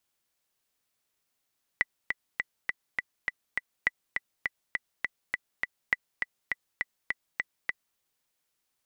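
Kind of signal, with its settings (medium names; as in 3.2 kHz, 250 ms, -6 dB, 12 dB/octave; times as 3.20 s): metronome 204 bpm, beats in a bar 7, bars 3, 1.98 kHz, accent 5 dB -10 dBFS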